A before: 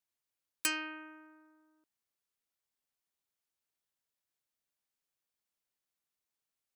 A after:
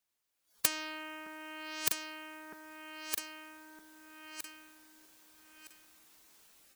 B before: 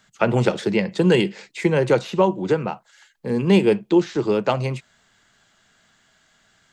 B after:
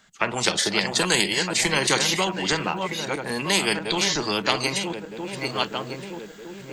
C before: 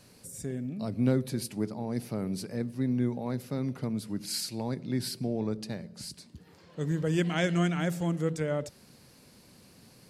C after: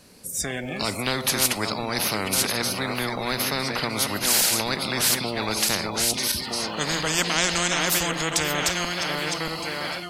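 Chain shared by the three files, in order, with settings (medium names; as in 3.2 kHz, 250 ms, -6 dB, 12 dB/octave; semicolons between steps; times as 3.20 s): backward echo that repeats 632 ms, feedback 45%, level -9 dB; peaking EQ 120 Hz -9 dB 0.47 oct; level rider gain up to 9 dB; spectral noise reduction 14 dB; spectrum-flattening compressor 4:1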